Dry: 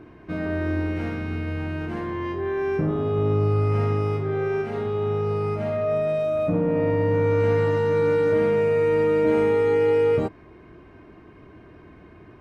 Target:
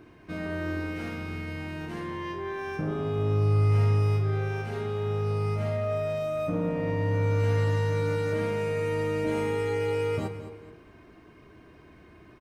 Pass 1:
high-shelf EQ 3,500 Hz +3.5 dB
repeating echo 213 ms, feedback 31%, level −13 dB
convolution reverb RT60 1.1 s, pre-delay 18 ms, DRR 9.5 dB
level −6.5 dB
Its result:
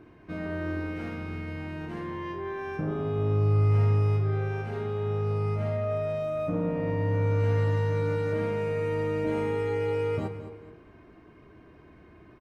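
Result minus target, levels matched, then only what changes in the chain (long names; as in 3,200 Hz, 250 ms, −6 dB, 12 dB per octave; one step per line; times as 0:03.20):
8,000 Hz band −8.5 dB
change: high-shelf EQ 3,500 Hz +14.5 dB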